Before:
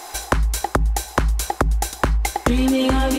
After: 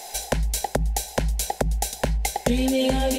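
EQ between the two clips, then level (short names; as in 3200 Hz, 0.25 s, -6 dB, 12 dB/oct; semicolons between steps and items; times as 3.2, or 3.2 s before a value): fixed phaser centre 320 Hz, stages 6; 0.0 dB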